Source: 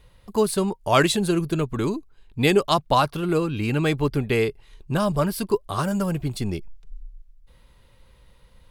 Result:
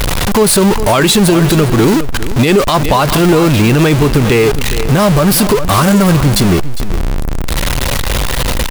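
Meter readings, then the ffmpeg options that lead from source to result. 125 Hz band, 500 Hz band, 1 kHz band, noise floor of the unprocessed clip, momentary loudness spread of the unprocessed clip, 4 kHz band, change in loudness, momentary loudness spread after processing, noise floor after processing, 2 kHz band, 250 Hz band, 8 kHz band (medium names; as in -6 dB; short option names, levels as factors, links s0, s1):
+15.0 dB, +11.5 dB, +11.0 dB, -56 dBFS, 9 LU, +14.5 dB, +12.0 dB, 8 LU, -14 dBFS, +12.5 dB, +14.0 dB, +18.5 dB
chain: -filter_complex "[0:a]aeval=exprs='val(0)+0.5*0.112*sgn(val(0))':c=same,acrusher=bits=8:dc=4:mix=0:aa=0.000001,asplit=2[s0][s1];[s1]aecho=0:1:406:0.188[s2];[s0][s2]amix=inputs=2:normalize=0,alimiter=level_in=3.98:limit=0.891:release=50:level=0:latency=1,volume=0.891"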